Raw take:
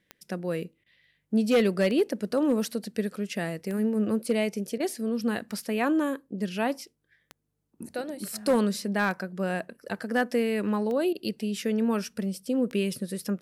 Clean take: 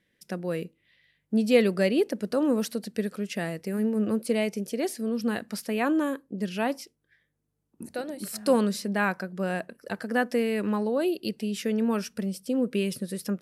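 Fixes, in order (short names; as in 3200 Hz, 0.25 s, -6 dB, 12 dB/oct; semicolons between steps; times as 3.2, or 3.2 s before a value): clip repair -16.5 dBFS; de-click; interpolate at 0.84/4.78/11.13, 20 ms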